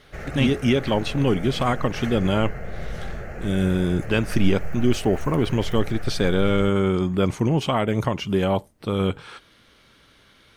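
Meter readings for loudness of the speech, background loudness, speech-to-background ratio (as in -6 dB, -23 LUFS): -23.0 LUFS, -36.0 LUFS, 13.0 dB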